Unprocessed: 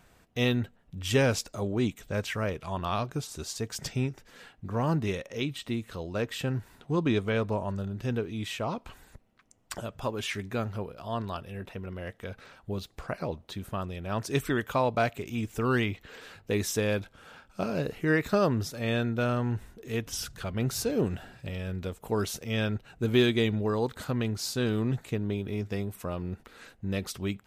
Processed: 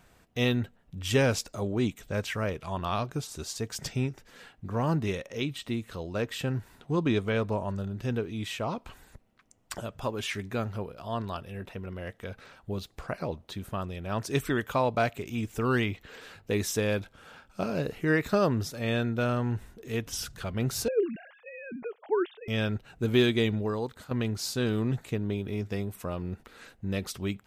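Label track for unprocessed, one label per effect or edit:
20.880000	22.480000	three sine waves on the formant tracks
23.520000	24.110000	fade out, to −11 dB

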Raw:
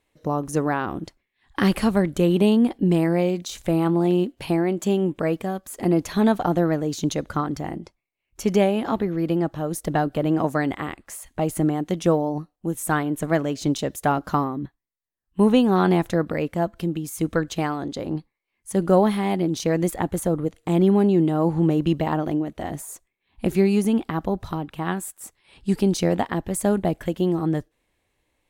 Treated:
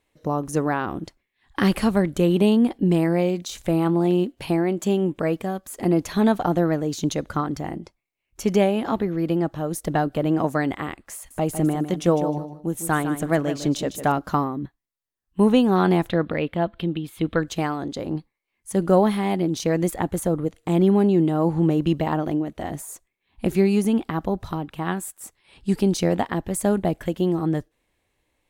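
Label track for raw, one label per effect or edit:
11.150000	14.120000	repeating echo 154 ms, feedback 22%, level −10.5 dB
16.090000	17.400000	high shelf with overshoot 4,700 Hz −10.5 dB, Q 3

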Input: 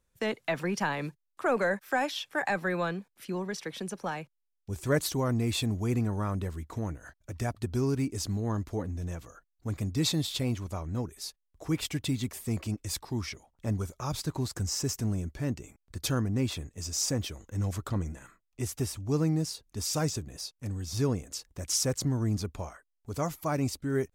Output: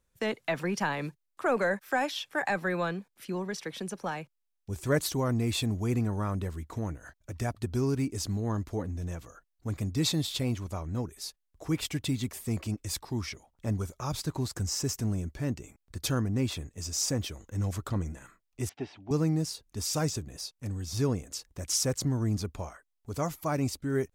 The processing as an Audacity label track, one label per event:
18.690000	19.110000	loudspeaker in its box 250–3,400 Hz, peaks and dips at 510 Hz −7 dB, 760 Hz +7 dB, 1,200 Hz −8 dB

